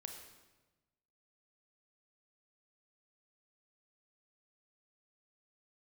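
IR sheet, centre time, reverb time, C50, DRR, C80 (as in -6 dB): 37 ms, 1.2 s, 5.0 dB, 3.0 dB, 6.5 dB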